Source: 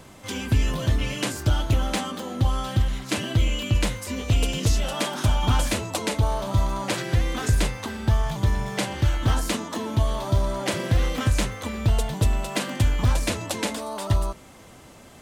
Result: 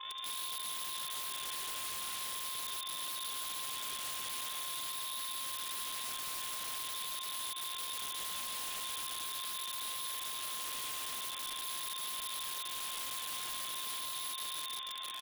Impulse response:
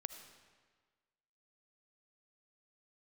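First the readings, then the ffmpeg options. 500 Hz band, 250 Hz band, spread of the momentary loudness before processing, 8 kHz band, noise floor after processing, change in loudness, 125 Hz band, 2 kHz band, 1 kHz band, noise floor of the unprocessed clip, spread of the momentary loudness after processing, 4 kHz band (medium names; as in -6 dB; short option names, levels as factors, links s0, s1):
-26.5 dB, -33.0 dB, 5 LU, -4.5 dB, -42 dBFS, -12.0 dB, under -40 dB, -13.5 dB, -11.0 dB, -48 dBFS, 1 LU, -5.5 dB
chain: -af "highpass=f=160:w=0.5412,highpass=f=160:w=1.3066,equalizer=f=1500:t=o:w=0.3:g=-3,aresample=16000,acrusher=samples=36:mix=1:aa=0.000001:lfo=1:lforange=36:lforate=0.44,aresample=44100,crystalizer=i=4.5:c=0,lowpass=f=3100:t=q:w=0.5098,lowpass=f=3100:t=q:w=0.6013,lowpass=f=3100:t=q:w=0.9,lowpass=f=3100:t=q:w=2.563,afreqshift=-3700,aecho=1:1:324|648|972|1296:0.316|0.108|0.0366|0.0124,acompressor=threshold=0.0126:ratio=4,aeval=exprs='(mod(100*val(0)+1,2)-1)/100':c=same,lowshelf=f=260:g=-6,aeval=exprs='val(0)+0.00282*sin(2*PI*1100*n/s)':c=same,afftdn=nr=19:nf=-63,afreqshift=-45,volume=1.68"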